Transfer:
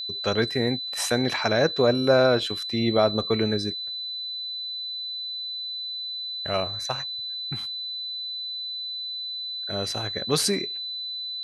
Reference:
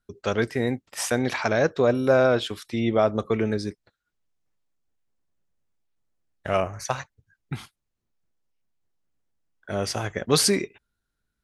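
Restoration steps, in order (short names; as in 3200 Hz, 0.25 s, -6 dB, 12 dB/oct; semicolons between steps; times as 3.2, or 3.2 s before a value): notch 4000 Hz, Q 30; gain 0 dB, from 5.72 s +3.5 dB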